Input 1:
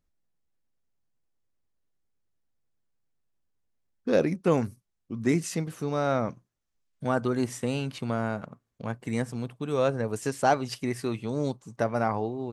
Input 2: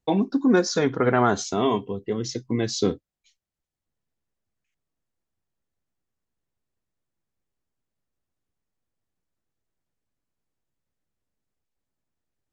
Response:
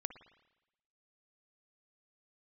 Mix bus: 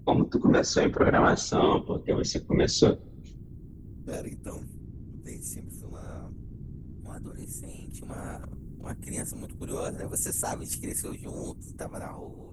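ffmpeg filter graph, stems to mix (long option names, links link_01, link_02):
-filter_complex "[0:a]aexciter=amount=15.9:drive=4.4:freq=6900,acrossover=split=360|3000[link_01][link_02][link_03];[link_02]acompressor=threshold=-27dB:ratio=2[link_04];[link_01][link_04][link_03]amix=inputs=3:normalize=0,volume=3dB,afade=type=out:start_time=4.09:duration=0.61:silence=0.298538,afade=type=in:start_time=7.86:duration=0.53:silence=0.251189[link_05];[1:a]acontrast=58,aeval=exprs='val(0)+0.0126*(sin(2*PI*60*n/s)+sin(2*PI*2*60*n/s)/2+sin(2*PI*3*60*n/s)/3+sin(2*PI*4*60*n/s)/4+sin(2*PI*5*60*n/s)/5)':channel_layout=same,volume=-2dB,asplit=2[link_06][link_07];[link_07]volume=-17dB[link_08];[2:a]atrim=start_sample=2205[link_09];[link_08][link_09]afir=irnorm=-1:irlink=0[link_10];[link_05][link_06][link_10]amix=inputs=3:normalize=0,dynaudnorm=framelen=480:gausssize=7:maxgain=6dB,afftfilt=real='hypot(re,im)*cos(2*PI*random(0))':imag='hypot(re,im)*sin(2*PI*random(1))':win_size=512:overlap=0.75"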